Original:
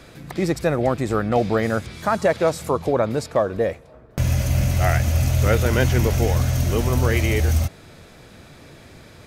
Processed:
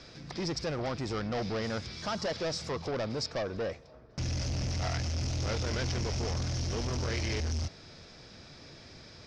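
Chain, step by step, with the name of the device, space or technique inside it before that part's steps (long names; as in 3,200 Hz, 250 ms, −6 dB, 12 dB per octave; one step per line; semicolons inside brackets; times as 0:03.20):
overdriven synthesiser ladder filter (soft clipping −22 dBFS, distortion −9 dB; transistor ladder low-pass 5,700 Hz, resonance 70%)
level +4 dB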